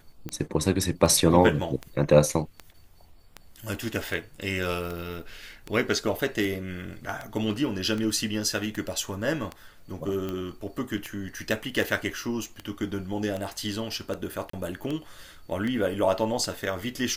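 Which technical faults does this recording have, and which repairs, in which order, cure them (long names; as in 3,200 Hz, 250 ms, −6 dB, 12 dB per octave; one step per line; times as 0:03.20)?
scratch tick 78 rpm −19 dBFS
0:14.50–0:14.53: drop-out 34 ms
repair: click removal
repair the gap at 0:14.50, 34 ms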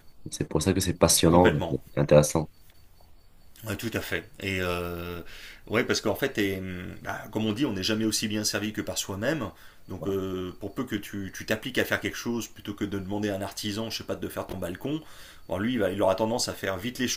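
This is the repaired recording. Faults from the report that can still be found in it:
none of them is left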